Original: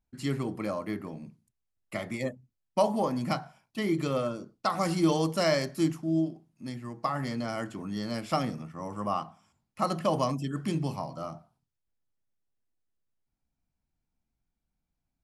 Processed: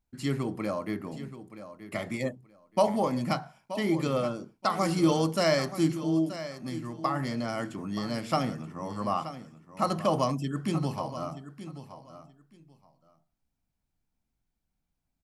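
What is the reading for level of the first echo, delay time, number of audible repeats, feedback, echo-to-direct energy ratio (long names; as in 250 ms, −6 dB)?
−13.0 dB, 927 ms, 2, 18%, −13.0 dB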